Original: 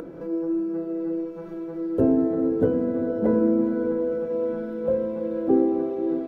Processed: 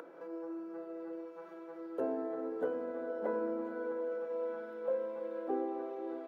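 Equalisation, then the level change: HPF 880 Hz 12 dB/oct; high shelf 2000 Hz -10.5 dB; 0.0 dB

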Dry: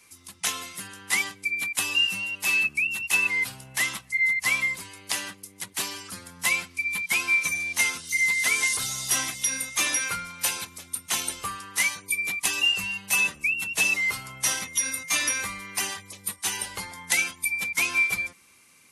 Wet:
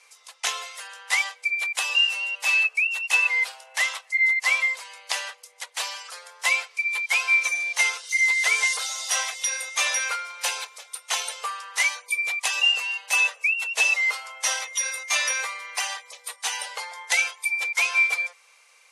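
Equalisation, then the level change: brick-wall FIR high-pass 430 Hz; LPF 7000 Hz 12 dB/oct; bell 770 Hz +2.5 dB 0.57 oct; +2.5 dB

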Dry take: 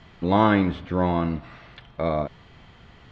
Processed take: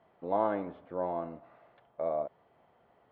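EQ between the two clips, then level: band-pass 630 Hz, Q 2; air absorption 71 m; -5.0 dB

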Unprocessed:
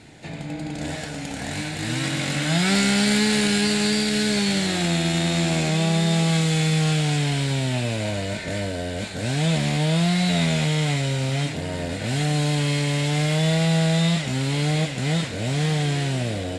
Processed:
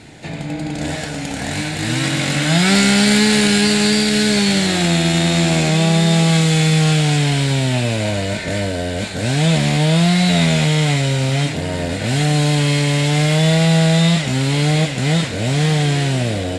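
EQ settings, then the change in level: none; +6.5 dB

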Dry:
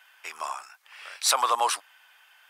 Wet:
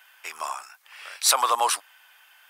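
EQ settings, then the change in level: high shelf 11000 Hz +9 dB; +1.5 dB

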